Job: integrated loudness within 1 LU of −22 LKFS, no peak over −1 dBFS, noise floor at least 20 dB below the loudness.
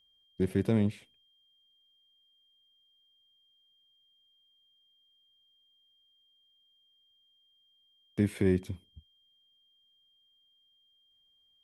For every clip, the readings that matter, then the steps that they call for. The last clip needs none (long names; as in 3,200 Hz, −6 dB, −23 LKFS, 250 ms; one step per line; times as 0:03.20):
interfering tone 3,200 Hz; level of the tone −66 dBFS; integrated loudness −31.0 LKFS; sample peak −15.0 dBFS; target loudness −22.0 LKFS
→ notch filter 3,200 Hz, Q 30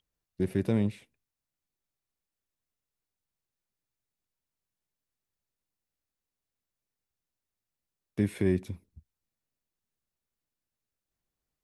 interfering tone none found; integrated loudness −30.0 LKFS; sample peak −15.0 dBFS; target loudness −22.0 LKFS
→ level +8 dB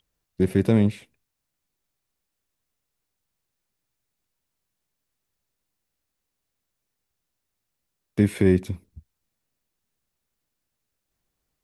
integrated loudness −22.5 LKFS; sample peak −7.0 dBFS; background noise floor −81 dBFS